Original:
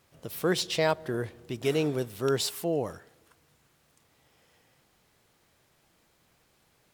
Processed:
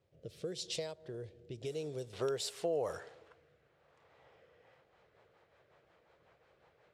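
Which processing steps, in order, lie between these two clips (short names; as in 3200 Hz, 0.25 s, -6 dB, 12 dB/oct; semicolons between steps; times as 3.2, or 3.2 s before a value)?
HPF 52 Hz; compressor 12:1, threshold -32 dBFS, peak gain reduction 13.5 dB; graphic EQ 250/500/4000/8000 Hz -9/+9/+3/+6 dB; rotary speaker horn 0.9 Hz, later 5.5 Hz, at 4.26; bell 1200 Hz -12.5 dB 2.6 oct, from 2.13 s +5 dB; low-pass opened by the level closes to 2000 Hz, open at -31.5 dBFS; gain -1.5 dB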